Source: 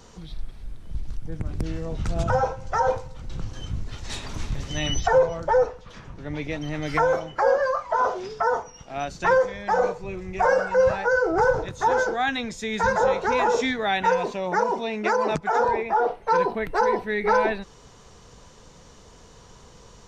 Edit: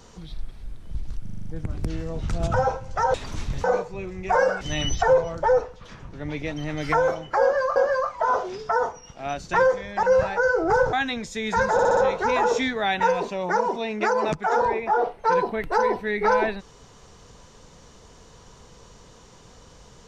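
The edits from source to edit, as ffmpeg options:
-filter_complex "[0:a]asplit=17[a][b][c][d][e][f][g][h][i][j][k][l][m][n][o][p][q];[a]atrim=end=1.262[r];[b]atrim=start=1.218:end=1.262[s];[c]atrim=start=1.218:end=1.262[t];[d]atrim=start=1.218:end=1.262[u];[e]atrim=start=1.218:end=1.262[v];[f]atrim=start=1.218:end=1.262[w];[g]atrim=start=1.218:end=2.902[x];[h]atrim=start=4.158:end=4.662[y];[i]atrim=start=9.738:end=10.712[z];[j]atrim=start=4.658:end=7.812[aa];[k]atrim=start=7.468:end=9.742[ab];[l]atrim=start=10.708:end=11.612[ac];[m]atrim=start=12.198:end=13.062[ad];[n]atrim=start=12.998:end=13.062[ae];[o]atrim=start=12.998:end=13.062[af];[p]atrim=start=12.998:end=13.062[ag];[q]atrim=start=12.998[ah];[r][s]acrossfade=d=0.004:c1=hsin:c2=hsin[ai];[ai][t]acrossfade=d=0.004:c1=hsin:c2=hsin[aj];[aj][u]acrossfade=d=0.004:c1=hsin:c2=hsin[ak];[ak][v]acrossfade=d=0.004:c1=hsin:c2=hsin[al];[al][w]acrossfade=d=0.004:c1=hsin:c2=hsin[am];[am][x]acrossfade=d=0.004:c1=hsin:c2=hsin[an];[an][y]acrossfade=d=0.004:c1=hsin:c2=hsin[ao];[ao][z]acrossfade=d=0.004:c1=hsin:c2=hsin[ap];[ap][aa]acrossfade=d=0.004:c1=hsin:c2=hsin[aq];[aq][ab]acrossfade=d=0.004:c1=hsin:c2=hsin[ar];[ar][ac]acrossfade=d=0.004:c1=hsin:c2=hsin[as];[as][ad]acrossfade=d=0.004:c1=hsin:c2=hsin[at];[at][ae]acrossfade=d=0.004:c1=hsin:c2=hsin[au];[au][af]acrossfade=d=0.004:c1=hsin:c2=hsin[av];[av][ag]acrossfade=d=0.004:c1=hsin:c2=hsin[aw];[aw][ah]acrossfade=d=0.004:c1=hsin:c2=hsin"

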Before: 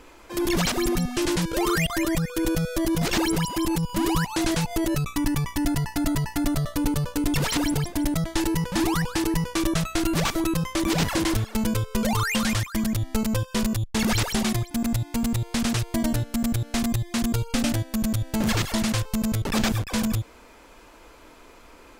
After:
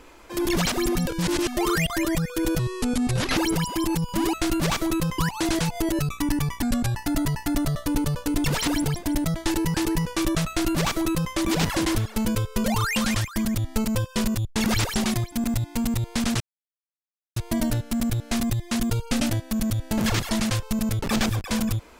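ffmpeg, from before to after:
-filter_complex "[0:a]asplit=11[a][b][c][d][e][f][g][h][i][j][k];[a]atrim=end=1.072[l];[b]atrim=start=1.068:end=1.572,asetpts=PTS-STARTPTS,areverse[m];[c]atrim=start=1.568:end=2.594[n];[d]atrim=start=2.59:end=3.17,asetpts=PTS-STARTPTS,asetrate=33075,aresample=44100[o];[e]atrim=start=3.166:end=4.142[p];[f]atrim=start=9.868:end=10.722[q];[g]atrim=start=4.138:end=5.584[r];[h]atrim=start=5.58:end=5.85,asetpts=PTS-STARTPTS,asetrate=36162,aresample=44100[s];[i]atrim=start=5.846:end=8.642[t];[j]atrim=start=9.128:end=15.79,asetpts=PTS-STARTPTS,afade=t=out:st=6.658:d=0.004:c=hsin,apad=pad_dur=0.96[u];[k]atrim=start=15.79,asetpts=PTS-STARTPTS,afade=t=in:d=0.004:c=hsin[v];[l][m]acrossfade=d=0.004:c1=hsin:c2=hsin[w];[w][n]acrossfade=d=0.004:c1=hsin:c2=hsin[x];[x][o]acrossfade=d=0.004:c1=hsin:c2=hsin[y];[y][p]acrossfade=d=0.004:c1=hsin:c2=hsin[z];[z][q]acrossfade=d=0.004:c1=hsin:c2=hsin[aa];[aa][r]acrossfade=d=0.004:c1=hsin:c2=hsin[ab];[ab][s]acrossfade=d=0.004:c1=hsin:c2=hsin[ac];[ac][t]acrossfade=d=0.004:c1=hsin:c2=hsin[ad];[u][v]concat=n=2:v=0:a=1[ae];[ad][ae]acrossfade=d=0.004:c1=hsin:c2=hsin"

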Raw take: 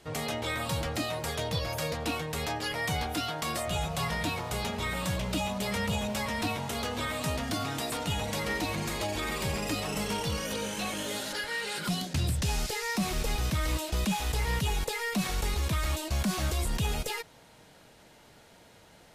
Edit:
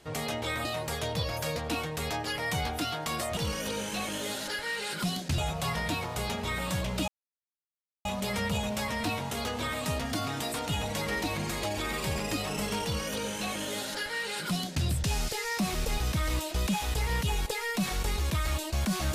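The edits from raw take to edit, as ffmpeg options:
-filter_complex "[0:a]asplit=5[a][b][c][d][e];[a]atrim=end=0.652[f];[b]atrim=start=1.008:end=3.732[g];[c]atrim=start=10.218:end=12.232[h];[d]atrim=start=3.728:end=5.43,asetpts=PTS-STARTPTS,afade=t=out:st=1.698:d=0.004:c=hsin,apad=pad_dur=0.97[i];[e]atrim=start=5.43,asetpts=PTS-STARTPTS,afade=t=in:d=0.004:c=hsin[j];[f][g]acrossfade=d=0.004:c1=hsin:c2=hsin[k];[k][h]acrossfade=d=0.004:c1=hsin:c2=hsin[l];[i][j]concat=n=2:v=0:a=1[m];[l][m]acrossfade=d=0.004:c1=hsin:c2=hsin"

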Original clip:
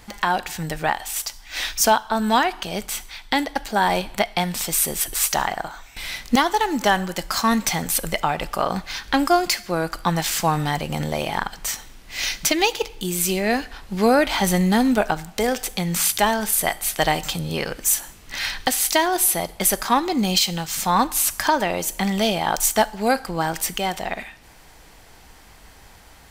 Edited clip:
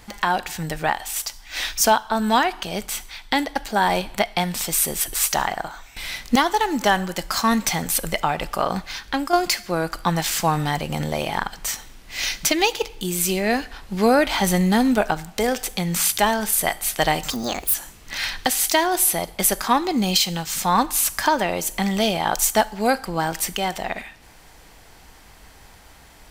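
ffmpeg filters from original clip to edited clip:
-filter_complex "[0:a]asplit=4[a][b][c][d];[a]atrim=end=9.33,asetpts=PTS-STARTPTS,afade=t=out:st=8.77:d=0.56:silence=0.421697[e];[b]atrim=start=9.33:end=17.304,asetpts=PTS-STARTPTS,afade=t=in:d=0.004:c=hsin:silence=0.421697[f];[c]atrim=start=17.3:end=17.96,asetpts=PTS-STARTPTS,asetrate=64827,aresample=44100[g];[d]atrim=start=17.956[h];[e][f]concat=n=2:v=0:a=1[i];[i][g]acrossfade=d=0.004:c1=hsin:c2=hsin[j];[j][h]acrossfade=d=0.004:c1=hsin:c2=hsin"

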